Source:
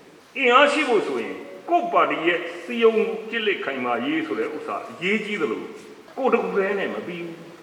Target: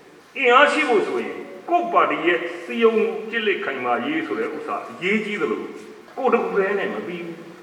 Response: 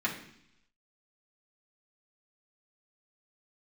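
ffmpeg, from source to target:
-filter_complex "[0:a]asplit=2[a][b];[b]highpass=180[c];[1:a]atrim=start_sample=2205,lowpass=2.1k[d];[c][d]afir=irnorm=-1:irlink=0,volume=-12dB[e];[a][e]amix=inputs=2:normalize=0"

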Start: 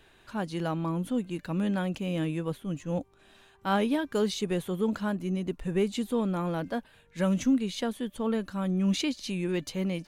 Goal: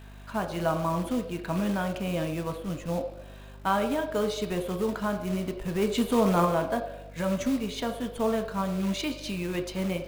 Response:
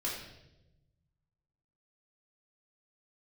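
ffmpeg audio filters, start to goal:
-filter_complex "[0:a]equalizer=f=950:w=0.32:g=3,asettb=1/sr,asplit=3[a][b][c];[a]atrim=end=8.614[d];[b]atrim=start=8.61:end=9.55,asetpts=PTS-STARTPTS,afade=t=in:d=0.004:c=qsin,afade=t=out:st=0.936:d=0.004:c=qsin,acompressor=threshold=-33dB:ratio=1.5[e];[c]atrim=start=9.546[f];[d][e]acrossfade=d=0.004:c1=hsin:c2=qsin[g];[g][f]acrossfade=d=0.004:c1=qsin:c2=hsin,alimiter=limit=-20dB:level=0:latency=1:release=338,asplit=3[h][i][j];[h]afade=t=out:st=5.81:d=0.02[k];[i]acontrast=41,afade=t=in:st=5.81:d=0.02,afade=t=out:st=6.44:d=0.02[l];[j]afade=t=in:st=6.44:d=0.02[m];[k][l][m]amix=inputs=3:normalize=0,aeval=exprs='val(0)+0.00562*(sin(2*PI*50*n/s)+sin(2*PI*2*50*n/s)/2+sin(2*PI*3*50*n/s)/3+sin(2*PI*4*50*n/s)/4+sin(2*PI*5*50*n/s)/5)':c=same,acrusher=bits=4:mode=log:mix=0:aa=0.000001,asplit=2[n][o];[o]highpass=f=350:w=0.5412,highpass=f=350:w=1.3066,equalizer=f=630:t=q:w=4:g=9,equalizer=f=1.1k:t=q:w=4:g=5,equalizer=f=1.9k:t=q:w=4:g=-7,equalizer=f=3.4k:t=q:w=4:g=-4,lowpass=f=4.6k:w=0.5412,lowpass=f=4.6k:w=1.3066[p];[1:a]atrim=start_sample=2205[q];[p][q]afir=irnorm=-1:irlink=0,volume=-7dB[r];[n][r]amix=inputs=2:normalize=0"

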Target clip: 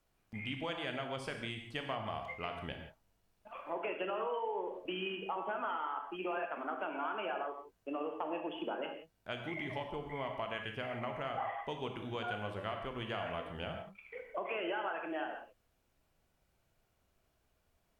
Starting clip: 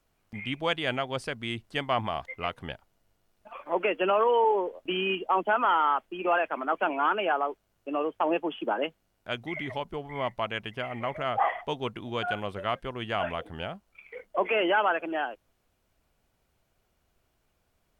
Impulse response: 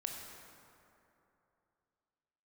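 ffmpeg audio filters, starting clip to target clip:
-filter_complex "[0:a]acompressor=threshold=-31dB:ratio=6[a];[1:a]atrim=start_sample=2205,afade=t=out:st=0.23:d=0.01,atrim=end_sample=10584[b];[a][b]afir=irnorm=-1:irlink=0,volume=-2.5dB"

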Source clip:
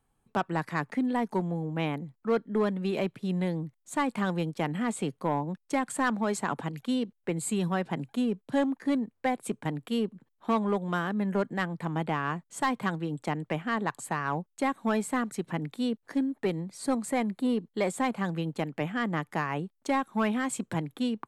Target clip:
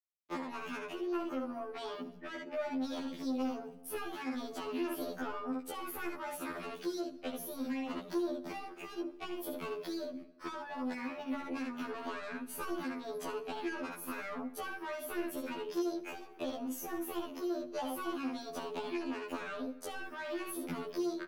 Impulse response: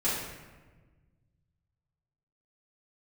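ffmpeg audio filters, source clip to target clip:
-filter_complex "[0:a]equalizer=f=95:t=o:w=1.6:g=-2.5,aecho=1:1:21|64:0.282|0.531,acompressor=threshold=-33dB:ratio=20,agate=range=-55dB:threshold=-53dB:ratio=16:detection=peak,adynamicequalizer=threshold=0.00112:dfrequency=120:dqfactor=3.1:tfrequency=120:tqfactor=3.1:attack=5:release=100:ratio=0.375:range=3:mode=boostabove:tftype=bell,asoftclip=type=tanh:threshold=-32dB,acrossover=split=310|660[a][b][c];[a]acompressor=threshold=-46dB:ratio=4[d];[b]acompressor=threshold=-49dB:ratio=4[e];[c]acompressor=threshold=-49dB:ratio=4[f];[d][e][f]amix=inputs=3:normalize=0,asetrate=62367,aresample=44100,atempo=0.707107,asplit=2[g][h];[1:a]atrim=start_sample=2205,adelay=59[i];[h][i]afir=irnorm=-1:irlink=0,volume=-25dB[j];[g][j]amix=inputs=2:normalize=0,afftfilt=real='re*2*eq(mod(b,4),0)':imag='im*2*eq(mod(b,4),0)':win_size=2048:overlap=0.75,volume=7.5dB"

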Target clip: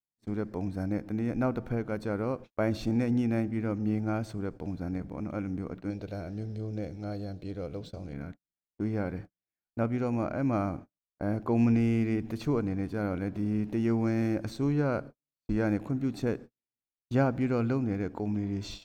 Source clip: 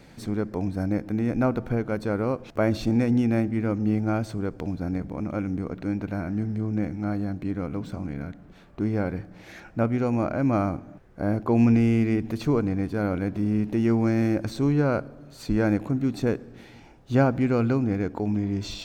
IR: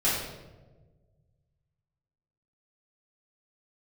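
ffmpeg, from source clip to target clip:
-filter_complex "[0:a]agate=range=-51dB:threshold=-35dB:ratio=16:detection=peak,asettb=1/sr,asplit=3[a][b][c];[a]atrim=end=5.904[d];[b]atrim=start=5.9:end=8.13,asetpts=PTS-STARTPTS,afade=t=in:d=0.004:c=qsin,afade=t=out:st=2.226:d=0.004:c=qsin,equalizer=f=250:t=o:w=1:g=-9,equalizer=f=500:t=o:w=1:g=8,equalizer=f=1k:t=o:w=1:g=-8,equalizer=f=2k:t=o:w=1:g=-6,equalizer=f=4k:t=o:w=1:g=10[e];[c]atrim=start=8.126[f];[d][e]acrossfade=d=0.004:c1=hsin:c2=qsin[g];[g][f]acrossfade=d=0.004:c1=qsin:c2=hsin,volume=-5.5dB"

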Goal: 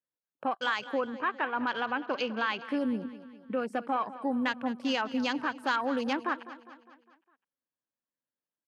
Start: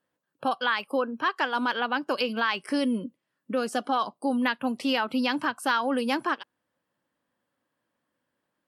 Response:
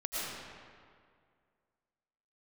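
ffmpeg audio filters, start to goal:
-filter_complex "[0:a]afwtdn=0.0126,asettb=1/sr,asplit=3[a][b][c];[a]atrim=end=1.154[d];[b]atrim=start=1.15:end=2.69,asetpts=PTS-STARTPTS,afade=t=in:d=0.004:c=qsin,afade=t=out:st=1.536:d=0.004:c=qsin,lowpass=4.1k[e];[c]atrim=start=2.686[f];[d][e]acrossfade=d=0.004:c1=hsin:c2=qsin[g];[g][f]acrossfade=d=0.004:c1=qsin:c2=hsin,asplit=2[h][i];[i]aecho=0:1:203|406|609|812|1015:0.168|0.0873|0.0454|0.0236|0.0123[j];[h][j]amix=inputs=2:normalize=0,volume=-4dB"

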